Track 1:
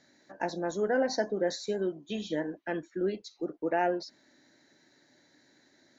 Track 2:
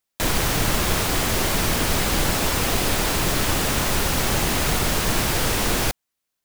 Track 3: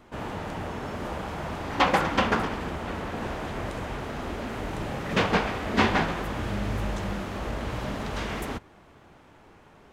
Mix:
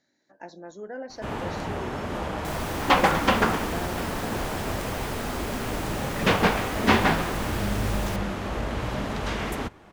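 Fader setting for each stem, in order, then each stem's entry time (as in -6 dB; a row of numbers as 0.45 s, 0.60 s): -9.5 dB, -15.5 dB, +2.5 dB; 0.00 s, 2.25 s, 1.10 s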